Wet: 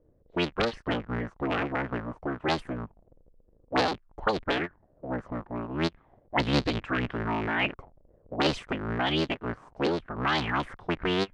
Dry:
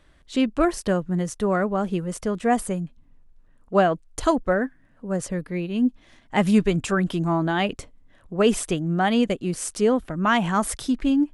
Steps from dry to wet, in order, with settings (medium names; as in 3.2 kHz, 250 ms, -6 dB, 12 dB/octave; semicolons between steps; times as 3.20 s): cycle switcher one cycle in 3, inverted; touch-sensitive low-pass 470–4300 Hz up, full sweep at -15.5 dBFS; trim -8 dB